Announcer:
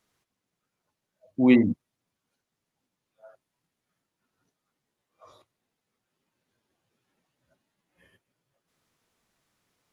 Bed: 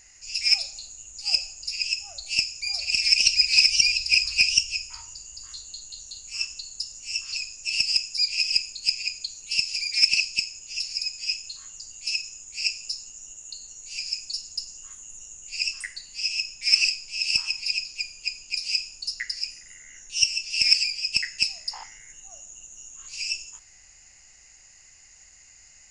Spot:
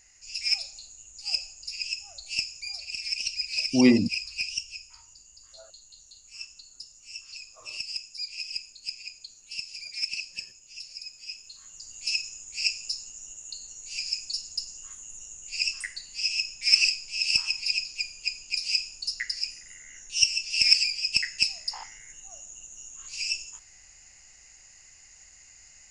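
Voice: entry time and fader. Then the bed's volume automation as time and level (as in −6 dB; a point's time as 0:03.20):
2.35 s, −0.5 dB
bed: 0:02.58 −5.5 dB
0:02.93 −11.5 dB
0:11.32 −11.5 dB
0:12.00 −0.5 dB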